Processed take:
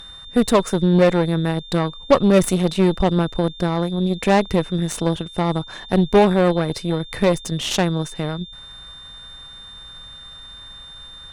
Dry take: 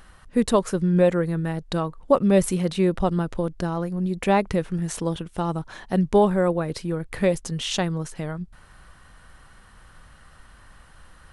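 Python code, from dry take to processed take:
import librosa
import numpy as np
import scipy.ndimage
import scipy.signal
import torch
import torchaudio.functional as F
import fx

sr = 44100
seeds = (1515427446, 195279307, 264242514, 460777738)

y = x + 10.0 ** (-41.0 / 20.0) * np.sin(2.0 * np.pi * 3600.0 * np.arange(len(x)) / sr)
y = fx.cheby_harmonics(y, sr, harmonics=(8,), levels_db=(-20,), full_scale_db=-5.5)
y = y * 10.0 ** (3.5 / 20.0)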